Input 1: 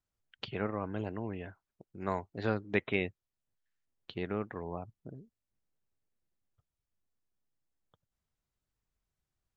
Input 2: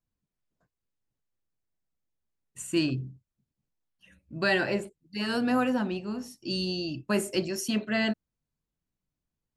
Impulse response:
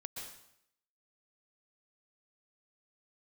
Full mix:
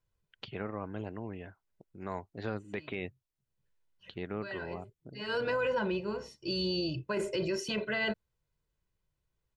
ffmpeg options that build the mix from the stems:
-filter_complex "[0:a]volume=0.75,asplit=2[s0][s1];[1:a]lowpass=3900,aecho=1:1:2:0.9,volume=1.06[s2];[s1]apad=whole_len=422072[s3];[s2][s3]sidechaincompress=threshold=0.00224:ratio=10:attack=5.4:release=356[s4];[s0][s4]amix=inputs=2:normalize=0,alimiter=limit=0.0631:level=0:latency=1:release=15"

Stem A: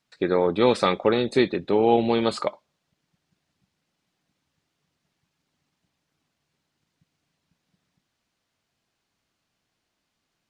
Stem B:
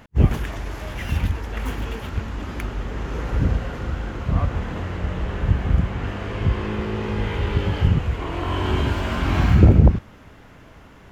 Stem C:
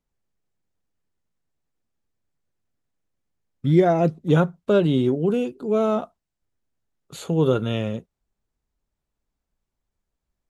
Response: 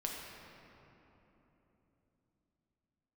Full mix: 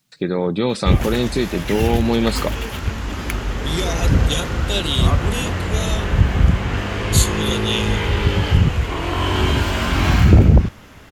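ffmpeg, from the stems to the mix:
-filter_complex "[0:a]equalizer=f=150:w=0.76:g=13,alimiter=limit=0.282:level=0:latency=1:release=269,volume=1.12[s0];[1:a]asoftclip=type=tanh:threshold=0.75,adelay=700,volume=1.12[s1];[2:a]aexciter=amount=9.7:drive=6.4:freq=2400,volume=0.188[s2];[s0][s1][s2]amix=inputs=3:normalize=0,highshelf=f=2700:g=9.5,dynaudnorm=f=950:g=5:m=3.76"

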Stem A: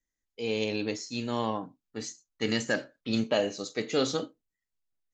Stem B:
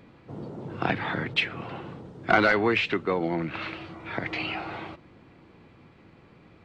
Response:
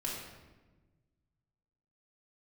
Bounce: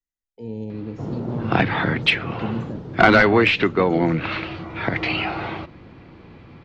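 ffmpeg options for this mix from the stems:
-filter_complex "[0:a]acrossover=split=260[s0][s1];[s1]acompressor=threshold=0.002:ratio=2[s2];[s0][s2]amix=inputs=2:normalize=0,afwtdn=0.00891,volume=0.944[s3];[1:a]lowpass=f=6100:w=0.5412,lowpass=f=6100:w=1.3066,adelay=700,volume=1.26[s4];[s3][s4]amix=inputs=2:normalize=0,lowshelf=f=120:g=6.5,acontrast=38"

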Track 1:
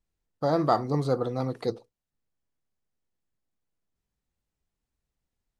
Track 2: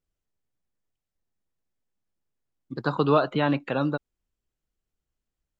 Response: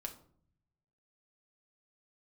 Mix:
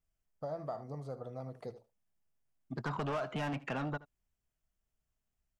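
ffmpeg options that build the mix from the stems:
-filter_complex "[0:a]lowshelf=f=160:g=6,acompressor=threshold=0.0562:ratio=6,volume=0.2,asplit=2[s0][s1];[s1]volume=0.188[s2];[1:a]equalizer=f=550:t=o:w=0.55:g=-11,asoftclip=type=tanh:threshold=0.0501,volume=0.841,asplit=2[s3][s4];[s4]volume=0.0891[s5];[s2][s5]amix=inputs=2:normalize=0,aecho=0:1:76:1[s6];[s0][s3][s6]amix=inputs=3:normalize=0,equalizer=f=315:t=o:w=0.33:g=-7,equalizer=f=630:t=o:w=0.33:g=10,equalizer=f=4000:t=o:w=0.33:g=-9,acompressor=threshold=0.0224:ratio=6"

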